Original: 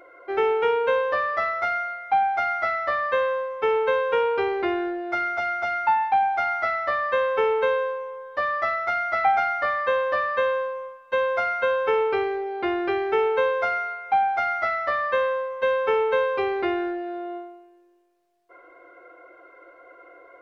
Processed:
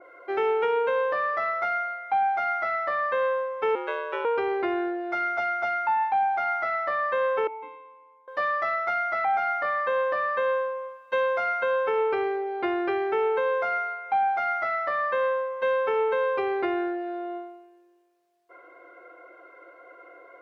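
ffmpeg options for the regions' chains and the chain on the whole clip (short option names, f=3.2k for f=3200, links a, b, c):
-filter_complex "[0:a]asettb=1/sr,asplit=3[a][b][c];[a]atrim=end=3.754[d];[b]atrim=start=3.75:end=4.25,asetpts=PTS-STARTPTS,afade=t=in:d=0.004:c=qsin,afade=t=out:st=0.496:d=0.004:c=qsin,highpass=f=920:p=1,aeval=exprs='val(0)*sin(2*PI*78*n/s)':c=same[e];[c]atrim=start=4.246[f];[d][e]acrossfade=d=0.004:c1=hsin:c2=qsin[g];[g][f]acrossfade=d=0.004:c1=qsin:c2=hsin,asettb=1/sr,asplit=3[h][i][j];[h]atrim=end=7.474[k];[i]atrim=start=7.47:end=8.28,asetpts=PTS-STARTPTS,afade=t=in:d=0.004:c=qsin,afade=t=out:st=0.806:d=0.004:c=qsin,asplit=3[l][m][n];[l]bandpass=f=300:t=q:w=8,volume=0dB[o];[m]bandpass=f=870:t=q:w=8,volume=-6dB[p];[n]bandpass=f=2.24k:t=q:w=8,volume=-9dB[q];[o][p][q]amix=inputs=3:normalize=0,equalizer=f=3k:w=2.2:g=-3.5[r];[j]atrim=start=8.276[s];[k][r]acrossfade=d=0.004:c1=hsin:c2=qsin[t];[t][s]acrossfade=d=0.004:c1=qsin:c2=hsin,highpass=f=180:p=1,alimiter=limit=-17dB:level=0:latency=1:release=114,adynamicequalizer=threshold=0.00794:dfrequency=2400:dqfactor=0.7:tfrequency=2400:tqfactor=0.7:attack=5:release=100:ratio=0.375:range=3:mode=cutabove:tftype=highshelf"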